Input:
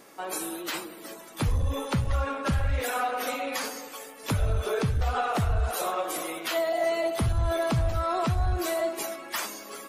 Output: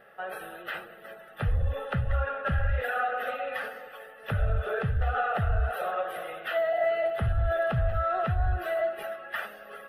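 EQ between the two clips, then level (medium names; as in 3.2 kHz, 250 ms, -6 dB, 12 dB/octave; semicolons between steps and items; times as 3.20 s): resonant high shelf 3.2 kHz -13 dB, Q 3; static phaser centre 1.5 kHz, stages 8; 0.0 dB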